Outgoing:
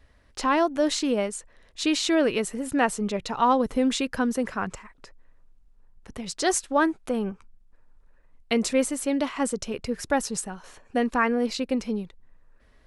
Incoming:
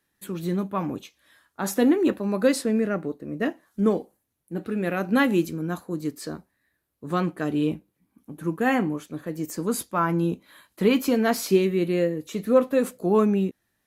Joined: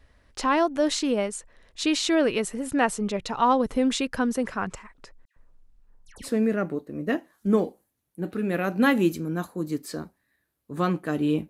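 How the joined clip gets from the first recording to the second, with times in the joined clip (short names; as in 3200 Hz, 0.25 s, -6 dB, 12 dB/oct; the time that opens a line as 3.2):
outgoing
5.25–6.3 dispersion lows, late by 0.114 s, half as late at 1900 Hz
6.26 switch to incoming from 2.59 s, crossfade 0.08 s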